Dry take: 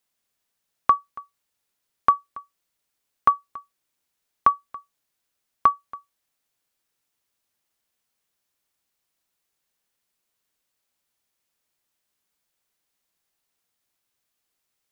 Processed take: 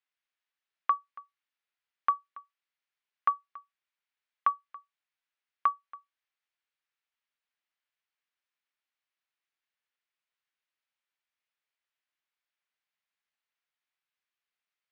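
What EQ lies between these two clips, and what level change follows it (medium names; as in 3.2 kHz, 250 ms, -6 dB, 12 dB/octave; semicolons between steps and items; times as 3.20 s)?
band-pass filter 2.1 kHz, Q 0.97; distance through air 88 m; -4.0 dB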